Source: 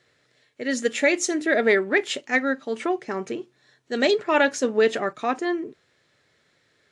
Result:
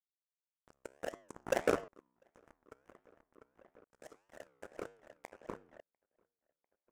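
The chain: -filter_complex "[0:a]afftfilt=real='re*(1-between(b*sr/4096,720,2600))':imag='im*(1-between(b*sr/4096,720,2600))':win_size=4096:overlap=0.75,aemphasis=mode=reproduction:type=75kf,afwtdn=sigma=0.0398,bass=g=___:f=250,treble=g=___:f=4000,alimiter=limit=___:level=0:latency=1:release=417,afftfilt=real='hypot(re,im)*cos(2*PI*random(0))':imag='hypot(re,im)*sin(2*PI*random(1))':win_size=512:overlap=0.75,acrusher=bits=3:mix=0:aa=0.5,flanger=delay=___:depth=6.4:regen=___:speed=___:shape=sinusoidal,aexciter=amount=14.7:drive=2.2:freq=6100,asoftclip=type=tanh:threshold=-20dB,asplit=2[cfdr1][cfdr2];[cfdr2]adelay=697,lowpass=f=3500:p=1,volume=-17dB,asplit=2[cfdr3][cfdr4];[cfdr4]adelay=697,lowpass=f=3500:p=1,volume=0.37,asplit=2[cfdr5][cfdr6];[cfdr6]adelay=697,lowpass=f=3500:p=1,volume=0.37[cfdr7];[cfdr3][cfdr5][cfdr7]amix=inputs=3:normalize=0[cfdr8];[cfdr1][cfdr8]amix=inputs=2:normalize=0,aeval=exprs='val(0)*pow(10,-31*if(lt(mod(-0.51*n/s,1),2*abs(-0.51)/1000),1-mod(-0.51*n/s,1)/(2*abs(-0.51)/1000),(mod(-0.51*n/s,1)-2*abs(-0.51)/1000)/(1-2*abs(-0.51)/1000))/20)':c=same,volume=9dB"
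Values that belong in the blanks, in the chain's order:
-12, 14, -16dB, 9.4, -88, 1.6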